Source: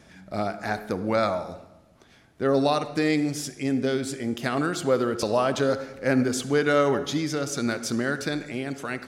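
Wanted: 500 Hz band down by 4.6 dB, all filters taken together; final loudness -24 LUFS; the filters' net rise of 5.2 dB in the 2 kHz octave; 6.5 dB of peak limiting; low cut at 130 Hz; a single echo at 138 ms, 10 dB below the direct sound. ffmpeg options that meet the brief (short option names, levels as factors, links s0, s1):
-af "highpass=130,equalizer=f=500:t=o:g=-6,equalizer=f=2000:t=o:g=7.5,alimiter=limit=0.188:level=0:latency=1,aecho=1:1:138:0.316,volume=1.5"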